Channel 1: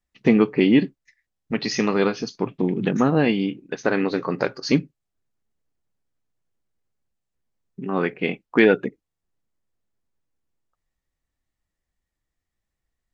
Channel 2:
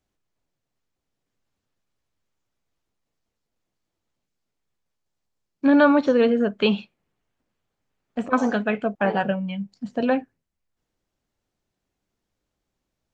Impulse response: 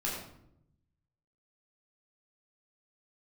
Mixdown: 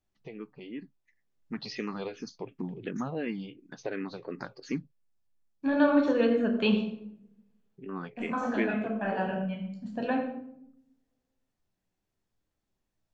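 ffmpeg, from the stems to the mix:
-filter_complex "[0:a]acompressor=threshold=-27dB:ratio=1.5,asplit=2[link_01][link_02];[link_02]afreqshift=-2.8[link_03];[link_01][link_03]amix=inputs=2:normalize=1,volume=-8dB,afade=type=in:start_time=0.85:duration=0.63:silence=0.334965,asplit=2[link_04][link_05];[1:a]volume=-10dB,asplit=2[link_06][link_07];[link_07]volume=-4.5dB[link_08];[link_05]apad=whole_len=579319[link_09];[link_06][link_09]sidechaincompress=threshold=-46dB:ratio=8:attack=9.3:release=1070[link_10];[2:a]atrim=start_sample=2205[link_11];[link_08][link_11]afir=irnorm=-1:irlink=0[link_12];[link_04][link_10][link_12]amix=inputs=3:normalize=0"

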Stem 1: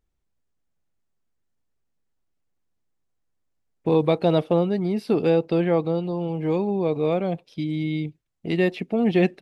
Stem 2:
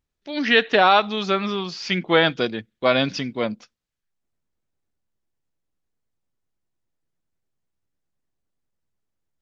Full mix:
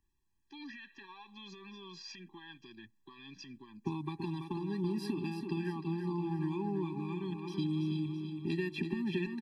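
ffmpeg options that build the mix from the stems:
ffmpeg -i stem1.wav -i stem2.wav -filter_complex "[0:a]acompressor=threshold=-26dB:ratio=6,volume=2.5dB,asplit=2[link_01][link_02];[link_02]volume=-7.5dB[link_03];[1:a]acompressor=threshold=-29dB:ratio=5,alimiter=level_in=3dB:limit=-24dB:level=0:latency=1:release=40,volume=-3dB,adelay=250,volume=-9dB[link_04];[link_03]aecho=0:1:331|662|993|1324|1655|1986|2317:1|0.5|0.25|0.125|0.0625|0.0312|0.0156[link_05];[link_01][link_04][link_05]amix=inputs=3:normalize=0,lowshelf=frequency=380:gain=-6.5,acrossover=split=170|3000[link_06][link_07][link_08];[link_07]acompressor=threshold=-32dB:ratio=6[link_09];[link_06][link_09][link_08]amix=inputs=3:normalize=0,afftfilt=real='re*eq(mod(floor(b*sr/1024/390),2),0)':imag='im*eq(mod(floor(b*sr/1024/390),2),0)':win_size=1024:overlap=0.75" out.wav

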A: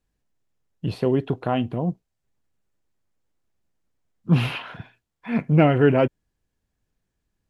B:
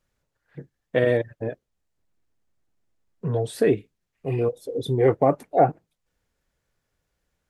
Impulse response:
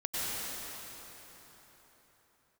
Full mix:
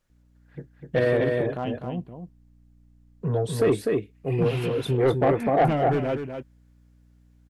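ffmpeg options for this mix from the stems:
-filter_complex "[0:a]asoftclip=type=hard:threshold=-11.5dB,aeval=exprs='val(0)+0.00282*(sin(2*PI*60*n/s)+sin(2*PI*2*60*n/s)/2+sin(2*PI*3*60*n/s)/3+sin(2*PI*4*60*n/s)/4+sin(2*PI*5*60*n/s)/5)':channel_layout=same,adelay=100,volume=-7dB,asplit=2[link_01][link_02];[link_02]volume=-8.5dB[link_03];[1:a]volume=0.5dB,asplit=2[link_04][link_05];[link_05]volume=-4.5dB[link_06];[link_03][link_06]amix=inputs=2:normalize=0,aecho=0:1:250:1[link_07];[link_01][link_04][link_07]amix=inputs=3:normalize=0,asoftclip=type=tanh:threshold=-13.5dB"

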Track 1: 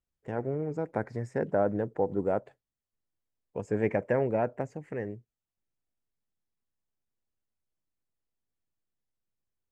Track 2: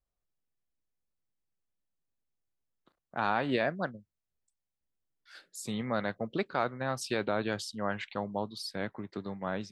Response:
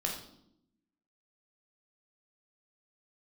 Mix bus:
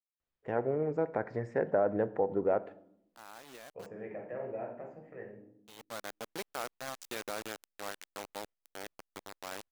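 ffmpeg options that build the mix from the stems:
-filter_complex "[0:a]lowpass=3000,alimiter=limit=-19.5dB:level=0:latency=1:release=159,adelay=200,volume=1.5dB,asplit=2[link_01][link_02];[link_02]volume=-15dB[link_03];[1:a]acrusher=bits=4:mix=0:aa=0.000001,volume=-8.5dB,afade=type=in:start_time=5.71:duration=0.4:silence=0.223872,asplit=2[link_04][link_05];[link_05]apad=whole_len=437436[link_06];[link_01][link_06]sidechaingate=range=-33dB:threshold=-50dB:ratio=16:detection=peak[link_07];[2:a]atrim=start_sample=2205[link_08];[link_03][link_08]afir=irnorm=-1:irlink=0[link_09];[link_07][link_04][link_09]amix=inputs=3:normalize=0,bass=frequency=250:gain=-9,treble=frequency=4000:gain=2"

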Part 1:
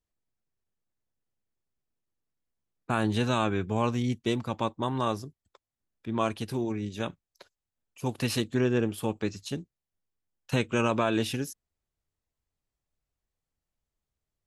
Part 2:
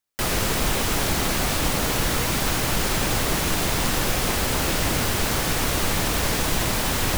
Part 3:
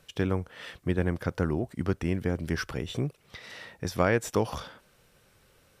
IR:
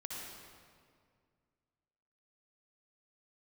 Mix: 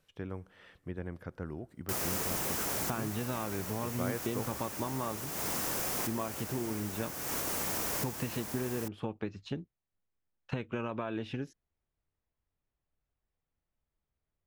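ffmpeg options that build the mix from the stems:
-filter_complex "[0:a]lowpass=2500,acompressor=threshold=-32dB:ratio=12,volume=0.5dB,asplit=2[link_01][link_02];[1:a]highpass=frequency=260:poles=1,highshelf=frequency=2600:gain=-9.5,aexciter=amount=3.2:drive=5.8:freq=5300,adelay=1700,volume=-11.5dB,asplit=2[link_03][link_04];[link_04]volume=-9.5dB[link_05];[2:a]acrossover=split=2600[link_06][link_07];[link_07]acompressor=threshold=-54dB:ratio=4:attack=1:release=60[link_08];[link_06][link_08]amix=inputs=2:normalize=0,volume=-13dB,asplit=2[link_09][link_10];[link_10]volume=-23.5dB[link_11];[link_02]apad=whole_len=391586[link_12];[link_03][link_12]sidechaincompress=threshold=-48dB:ratio=8:attack=38:release=255[link_13];[3:a]atrim=start_sample=2205[link_14];[link_05][link_11]amix=inputs=2:normalize=0[link_15];[link_15][link_14]afir=irnorm=-1:irlink=0[link_16];[link_01][link_13][link_09][link_16]amix=inputs=4:normalize=0"

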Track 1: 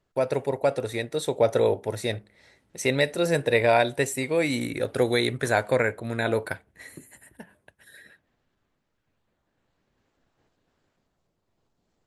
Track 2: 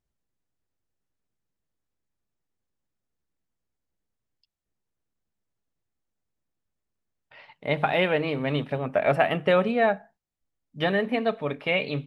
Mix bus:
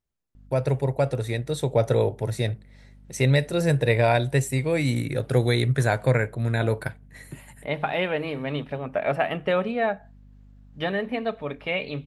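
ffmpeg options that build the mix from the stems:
ffmpeg -i stem1.wav -i stem2.wav -filter_complex "[0:a]equalizer=frequency=130:width_type=o:width=0.7:gain=15,aeval=exprs='val(0)+0.00447*(sin(2*PI*50*n/s)+sin(2*PI*2*50*n/s)/2+sin(2*PI*3*50*n/s)/3+sin(2*PI*4*50*n/s)/4+sin(2*PI*5*50*n/s)/5)':channel_layout=same,adelay=350,volume=-1.5dB[link_01];[1:a]volume=-2.5dB,asplit=2[link_02][link_03];[link_03]apad=whole_len=547555[link_04];[link_01][link_04]sidechaincompress=threshold=-36dB:ratio=8:attack=16:release=127[link_05];[link_05][link_02]amix=inputs=2:normalize=0" out.wav

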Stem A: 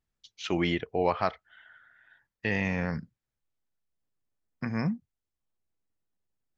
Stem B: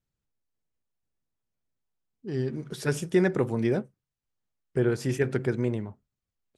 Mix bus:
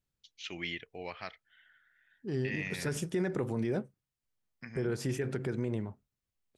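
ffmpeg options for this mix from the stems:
ffmpeg -i stem1.wav -i stem2.wav -filter_complex "[0:a]highshelf=frequency=1500:width_type=q:width=1.5:gain=9,volume=-15.5dB[link_01];[1:a]volume=-2dB[link_02];[link_01][link_02]amix=inputs=2:normalize=0,alimiter=limit=-23.5dB:level=0:latency=1:release=71" out.wav

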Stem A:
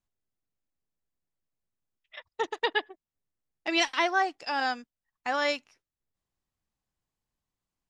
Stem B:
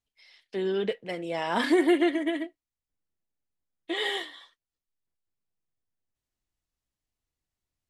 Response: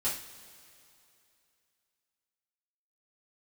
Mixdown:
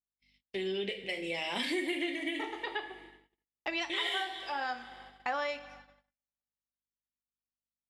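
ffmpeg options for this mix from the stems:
-filter_complex "[0:a]tremolo=f=1.7:d=0.46,aeval=exprs='val(0)+0.00251*(sin(2*PI*50*n/s)+sin(2*PI*2*50*n/s)/2+sin(2*PI*3*50*n/s)/3+sin(2*PI*4*50*n/s)/4+sin(2*PI*5*50*n/s)/5)':channel_layout=same,bass=frequency=250:gain=-13,treble=frequency=4000:gain=-7,volume=2.5dB,asplit=2[link_01][link_02];[link_02]volume=-13.5dB[link_03];[1:a]agate=range=-6dB:threshold=-47dB:ratio=16:detection=peak,highshelf=frequency=1800:width_type=q:width=3:gain=7.5,volume=-7dB,asplit=3[link_04][link_05][link_06];[link_05]volume=-7dB[link_07];[link_06]apad=whole_len=347976[link_08];[link_01][link_08]sidechaincompress=threshold=-36dB:ratio=8:attack=23:release=1330[link_09];[2:a]atrim=start_sample=2205[link_10];[link_03][link_07]amix=inputs=2:normalize=0[link_11];[link_11][link_10]afir=irnorm=-1:irlink=0[link_12];[link_09][link_04][link_12]amix=inputs=3:normalize=0,agate=range=-46dB:threshold=-52dB:ratio=16:detection=peak,acompressor=threshold=-33dB:ratio=3"

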